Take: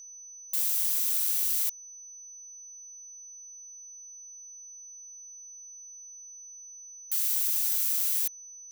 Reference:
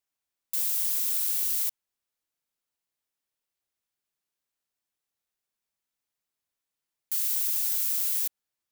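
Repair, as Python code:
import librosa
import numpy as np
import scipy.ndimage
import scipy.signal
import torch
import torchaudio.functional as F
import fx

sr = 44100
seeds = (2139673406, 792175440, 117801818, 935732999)

y = fx.notch(x, sr, hz=6000.0, q=30.0)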